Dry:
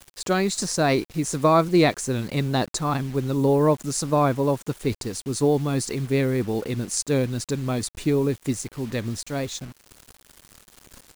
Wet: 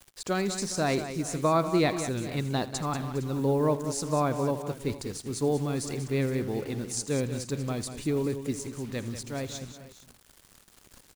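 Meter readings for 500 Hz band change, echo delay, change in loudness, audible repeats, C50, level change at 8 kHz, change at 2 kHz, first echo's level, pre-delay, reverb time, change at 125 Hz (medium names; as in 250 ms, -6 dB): -6.0 dB, 81 ms, -6.0 dB, 4, no reverb, -6.0 dB, -6.0 dB, -17.5 dB, no reverb, no reverb, -6.0 dB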